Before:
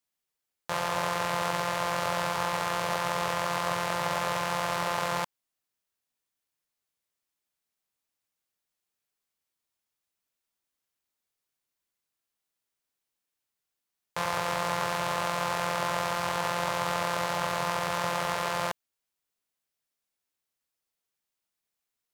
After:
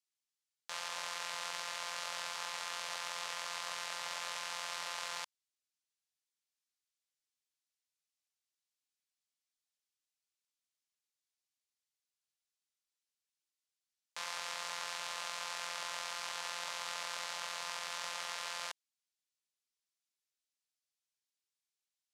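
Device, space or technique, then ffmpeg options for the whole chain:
piezo pickup straight into a mixer: -af "lowpass=5800,aderivative,volume=1.26"

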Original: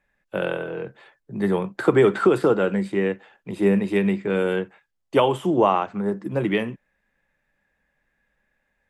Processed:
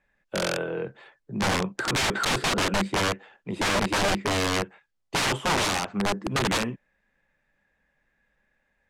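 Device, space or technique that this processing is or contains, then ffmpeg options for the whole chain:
overflowing digital effects unit: -af "aeval=exprs='(mod(8.41*val(0)+1,2)-1)/8.41':c=same,lowpass=8100"

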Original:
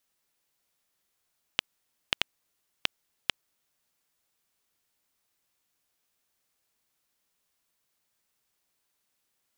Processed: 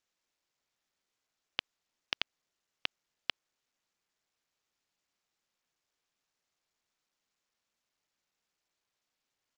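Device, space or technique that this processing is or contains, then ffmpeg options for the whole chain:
Bluetooth headset: -af "highpass=f=200:p=1,aresample=16000,aresample=44100,volume=0.531" -ar 44100 -c:a sbc -b:a 64k

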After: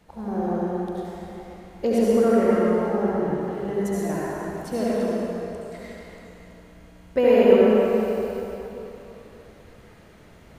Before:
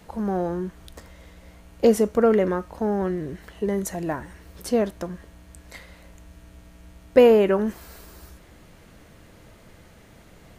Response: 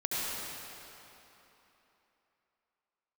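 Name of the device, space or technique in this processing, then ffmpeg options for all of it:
swimming-pool hall: -filter_complex "[1:a]atrim=start_sample=2205[s0];[0:a][s0]afir=irnorm=-1:irlink=0,highshelf=f=5500:g=-5,volume=0.473"

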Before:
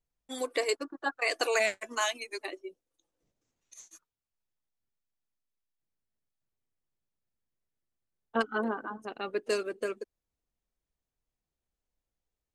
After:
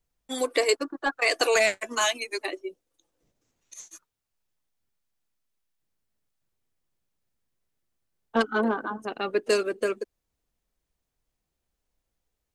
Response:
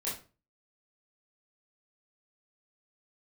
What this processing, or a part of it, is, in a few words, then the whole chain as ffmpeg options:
one-band saturation: -filter_complex "[0:a]acrossover=split=560|2300[s0][s1][s2];[s1]asoftclip=type=tanh:threshold=0.0398[s3];[s0][s3][s2]amix=inputs=3:normalize=0,volume=2.24"

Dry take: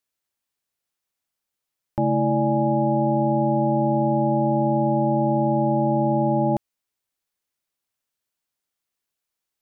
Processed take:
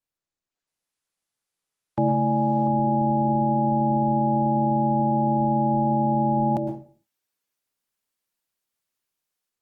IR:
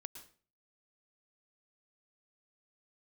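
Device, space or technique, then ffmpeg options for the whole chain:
far-field microphone of a smart speaker: -filter_complex "[1:a]atrim=start_sample=2205[s0];[0:a][s0]afir=irnorm=-1:irlink=0,highpass=f=88:w=0.5412,highpass=f=88:w=1.3066,dynaudnorm=f=430:g=3:m=3.76,volume=0.531" -ar 48000 -c:a libopus -b:a 24k

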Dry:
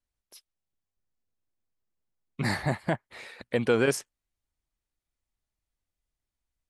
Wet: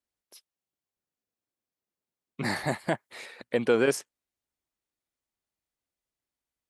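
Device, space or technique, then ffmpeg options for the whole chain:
filter by subtraction: -filter_complex "[0:a]asplit=2[s0][s1];[s1]lowpass=330,volume=-1[s2];[s0][s2]amix=inputs=2:normalize=0,asettb=1/sr,asplit=3[s3][s4][s5];[s3]atrim=end=2.564[s6];[s4]atrim=start=2.56:end=3.26,asetpts=PTS-STARTPTS,afade=t=in:d=0.004:c=qsin,afade=t=out:st=0.696:d=0.004:c=qsin,highshelf=f=4100:g=9[s7];[s5]atrim=start=3.256[s8];[s6][s7]acrossfade=d=0.004:c1=hsin:c2=qsin[s9];[s9][s8]acrossfade=d=0.004:c1=qsin:c2=hsin,volume=0.891"

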